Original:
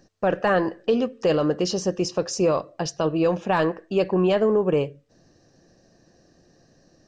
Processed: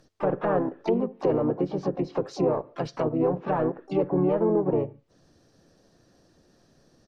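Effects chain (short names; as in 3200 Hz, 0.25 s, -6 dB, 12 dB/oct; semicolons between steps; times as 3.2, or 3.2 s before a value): harmoniser -4 st -4 dB, +7 st -12 dB, +12 st -15 dB; treble ducked by the level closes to 970 Hz, closed at -17.5 dBFS; gain -4.5 dB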